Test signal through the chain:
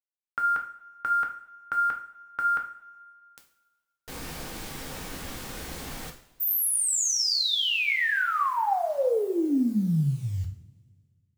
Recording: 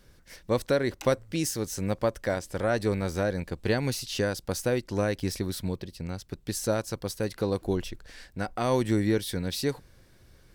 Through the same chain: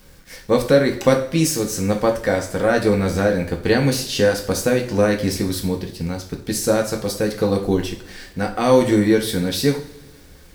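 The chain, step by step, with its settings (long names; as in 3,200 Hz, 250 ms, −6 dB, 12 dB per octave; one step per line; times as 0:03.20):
bit-depth reduction 10 bits, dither none
coupled-rooms reverb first 0.44 s, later 2 s, from −21 dB, DRR 1.5 dB
level +7 dB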